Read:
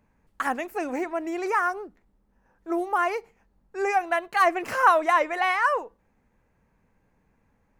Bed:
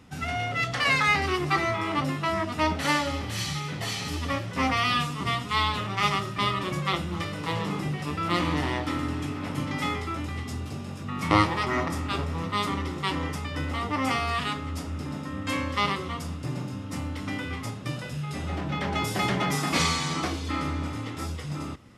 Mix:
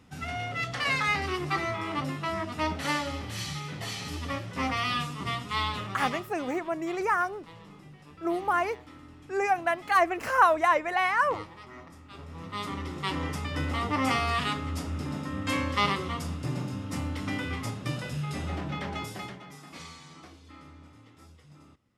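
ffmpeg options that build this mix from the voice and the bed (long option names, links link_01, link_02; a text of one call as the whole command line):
ffmpeg -i stem1.wav -i stem2.wav -filter_complex "[0:a]adelay=5550,volume=-2dB[link_01];[1:a]volume=15.5dB,afade=type=out:start_time=5.8:duration=0.61:silence=0.16788,afade=type=in:start_time=12.09:duration=1.46:silence=0.1,afade=type=out:start_time=18.26:duration=1.14:silence=0.0944061[link_02];[link_01][link_02]amix=inputs=2:normalize=0" out.wav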